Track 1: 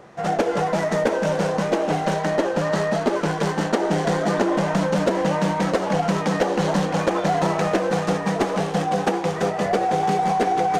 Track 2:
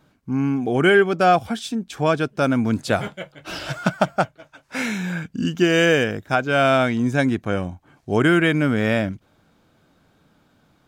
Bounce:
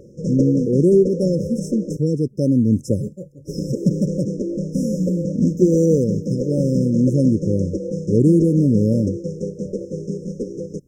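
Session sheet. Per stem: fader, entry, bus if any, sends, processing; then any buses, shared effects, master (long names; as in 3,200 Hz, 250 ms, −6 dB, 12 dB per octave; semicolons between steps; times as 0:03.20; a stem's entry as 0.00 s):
+1.0 dB, 0.00 s, muted 0:01.97–0:03.48, no send, low-pass filter 8,000 Hz 24 dB per octave; automatic ducking −8 dB, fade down 0.85 s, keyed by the second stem
−1.5 dB, 0.00 s, no send, tape wow and flutter 41 cents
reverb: not used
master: linear-phase brick-wall band-stop 580–5,100 Hz; low-shelf EQ 320 Hz +9 dB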